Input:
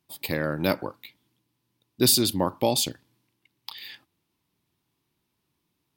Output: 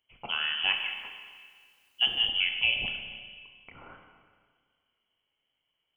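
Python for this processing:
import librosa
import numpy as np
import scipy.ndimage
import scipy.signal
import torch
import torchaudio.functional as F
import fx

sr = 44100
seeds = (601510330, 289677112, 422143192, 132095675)

y = fx.freq_invert(x, sr, carrier_hz=3200)
y = fx.rev_schroeder(y, sr, rt60_s=1.8, comb_ms=29, drr_db=4.0)
y = fx.dmg_noise_colour(y, sr, seeds[0], colour='white', level_db=-68.0, at=(0.75, 2.29), fade=0.02)
y = F.gain(torch.from_numpy(y), -4.0).numpy()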